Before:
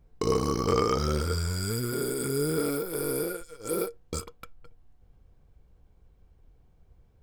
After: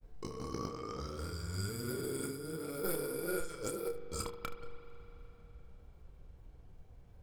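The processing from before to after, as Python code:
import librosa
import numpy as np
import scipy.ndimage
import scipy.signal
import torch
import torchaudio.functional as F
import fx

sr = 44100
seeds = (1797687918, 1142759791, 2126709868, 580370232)

p1 = fx.over_compress(x, sr, threshold_db=-36.0, ratio=-1.0)
p2 = fx.granulator(p1, sr, seeds[0], grain_ms=100.0, per_s=20.0, spray_ms=25.0, spread_st=0)
p3 = p2 + fx.room_early_taps(p2, sr, ms=(30, 74), db=(-8.5, -14.5), dry=0)
p4 = fx.rev_spring(p3, sr, rt60_s=3.6, pass_ms=(40,), chirp_ms=40, drr_db=10.0)
y = p4 * 10.0 ** (-3.0 / 20.0)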